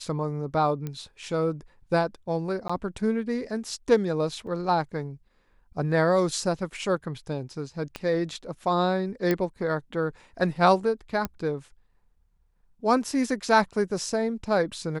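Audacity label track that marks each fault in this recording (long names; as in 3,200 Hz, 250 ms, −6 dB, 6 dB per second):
0.870000	0.870000	click −20 dBFS
2.680000	2.690000	drop-out 15 ms
4.470000	4.470000	drop-out 2.6 ms
7.960000	7.960000	click −18 dBFS
9.310000	9.310000	click −12 dBFS
11.250000	11.250000	click −14 dBFS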